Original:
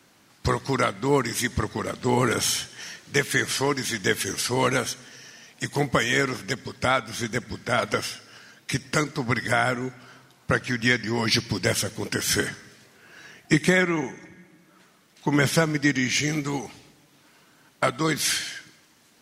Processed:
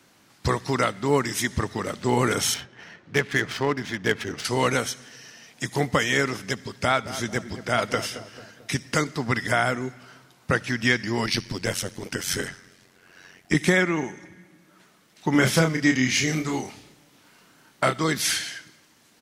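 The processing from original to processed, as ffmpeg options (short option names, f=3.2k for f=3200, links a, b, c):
-filter_complex "[0:a]asettb=1/sr,asplit=3[a][b][c];[a]atrim=end=2.544[d];[b]atrim=start=2.54:end=4.45,asetpts=PTS-STARTPTS,afade=t=in:d=0.004:c=qsin,afade=t=out:st=1.906:d=0.004:c=qsin,adynamicsmooth=sensitivity=2:basefreq=1.8k[e];[c]atrim=start=4.446[f];[d][e]acrossfade=d=0.004:c1=hsin:c2=qsin[g];[g][f]acrossfade=d=0.004:c1=qsin:c2=hsin,asplit=3[h][i][j];[h]afade=t=out:st=6.88:d=0.02[k];[i]asplit=2[l][m];[m]adelay=221,lowpass=f=1.2k:p=1,volume=-12dB,asplit=2[n][o];[o]adelay=221,lowpass=f=1.2k:p=1,volume=0.51,asplit=2[p][q];[q]adelay=221,lowpass=f=1.2k:p=1,volume=0.51,asplit=2[r][s];[s]adelay=221,lowpass=f=1.2k:p=1,volume=0.51,asplit=2[t][u];[u]adelay=221,lowpass=f=1.2k:p=1,volume=0.51[v];[l][n][p][r][t][v]amix=inputs=6:normalize=0,afade=t=in:st=6.88:d=0.02,afade=t=out:st=8.75:d=0.02[w];[j]afade=t=in:st=8.75:d=0.02[x];[k][w][x]amix=inputs=3:normalize=0,asettb=1/sr,asplit=3[y][z][aa];[y]atrim=end=11.264[ab];[z]atrim=start=11.26:end=13.55,asetpts=PTS-STARTPTS,afade=t=in:d=0.004:c=qsin,afade=t=out:st=2.286:d=0.004:c=qsin,tremolo=f=91:d=0.75[ac];[aa]atrim=start=13.546[ad];[ab][ac]acrossfade=d=0.004:c1=hsin:c2=qsin[ae];[ae][ad]acrossfade=d=0.004:c1=qsin:c2=hsin,asettb=1/sr,asplit=3[af][ag][ah];[af]atrim=end=15.314[ai];[ag]atrim=start=15.31:end=18.04,asetpts=PTS-STARTPTS,afade=t=in:d=0.004:c=qsin,afade=t=out:st=2.726:d=0.004:c=qsin,asplit=2[aj][ak];[ak]adelay=31,volume=-5dB[al];[aj][al]amix=inputs=2:normalize=0,atrim=end_sample=120393[am];[ah]atrim=start=18.036[an];[ai][am]acrossfade=d=0.004:c1=hsin:c2=qsin[ao];[ao][an]acrossfade=d=0.004:c1=qsin:c2=hsin"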